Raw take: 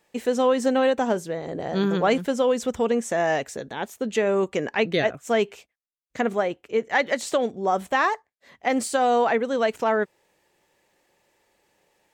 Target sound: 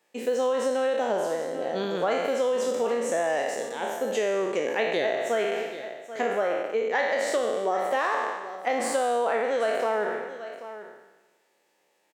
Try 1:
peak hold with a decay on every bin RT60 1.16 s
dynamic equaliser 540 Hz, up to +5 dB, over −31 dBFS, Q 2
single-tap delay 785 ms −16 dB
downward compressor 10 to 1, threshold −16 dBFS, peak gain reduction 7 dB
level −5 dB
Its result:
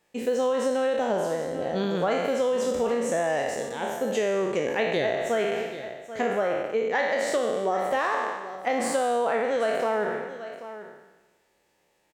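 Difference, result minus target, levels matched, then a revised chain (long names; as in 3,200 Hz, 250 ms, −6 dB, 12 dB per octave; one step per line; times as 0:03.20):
250 Hz band +3.0 dB
peak hold with a decay on every bin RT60 1.16 s
dynamic equaliser 540 Hz, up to +5 dB, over −31 dBFS, Q 2
single-tap delay 785 ms −16 dB
downward compressor 10 to 1, threshold −16 dBFS, peak gain reduction 7 dB
high-pass filter 270 Hz 12 dB per octave
level −5 dB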